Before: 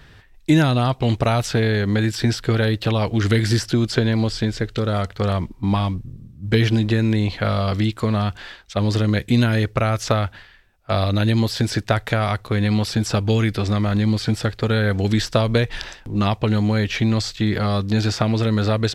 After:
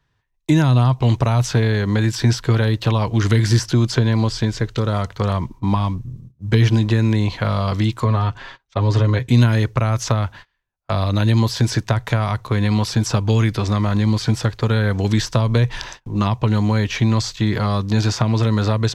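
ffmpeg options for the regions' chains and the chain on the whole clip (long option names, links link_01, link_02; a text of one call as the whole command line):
ffmpeg -i in.wav -filter_complex "[0:a]asettb=1/sr,asplit=3[link_01][link_02][link_03];[link_01]atrim=end=8.044[link_04];[link_02]atrim=start=8.04:end=9.29,asetpts=PTS-STARTPTS,afade=type=in:duration=0.004:curve=qsin,afade=type=out:start_time=1.246:duration=0.004:curve=qsin,lowpass=frequency=2700:poles=1,aecho=1:1:7.4:0.6,atrim=end_sample=55125[link_05];[link_03]atrim=start=9.286[link_06];[link_04][link_05]acrossfade=duration=0.004:curve1=hsin:curve2=qsin[link_07];[link_07][link_06]acrossfade=duration=0.004:curve1=qsin:curve2=hsin,agate=range=-23dB:threshold=-38dB:ratio=16:detection=peak,equalizer=frequency=125:width_type=o:width=0.33:gain=7,equalizer=frequency=1000:width_type=o:width=0.33:gain=10,equalizer=frequency=6300:width_type=o:width=0.33:gain=6,acrossover=split=320[link_08][link_09];[link_09]acompressor=threshold=-20dB:ratio=6[link_10];[link_08][link_10]amix=inputs=2:normalize=0" out.wav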